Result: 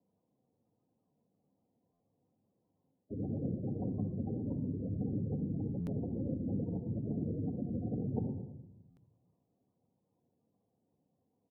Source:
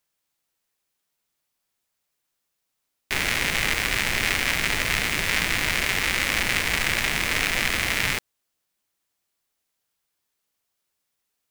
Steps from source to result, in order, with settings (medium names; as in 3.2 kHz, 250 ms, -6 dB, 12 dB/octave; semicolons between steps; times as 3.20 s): median filter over 25 samples; tilt shelf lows +10 dB, about 1.4 kHz; on a send: frequency-shifting echo 110 ms, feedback 44%, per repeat +41 Hz, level -20 dB; on the sum: peak limiter -20 dBFS, peak gain reduction 7.5 dB; reverse; compression 5:1, threshold -37 dBFS, peak gain reduction 12 dB; reverse; spectral gate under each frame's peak -15 dB strong; high-pass 100 Hz 24 dB/octave; bass shelf 350 Hz +6 dB; simulated room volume 2700 m³, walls furnished, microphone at 1.9 m; buffer glitch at 1.93/5.80/8.90 s, samples 512, times 5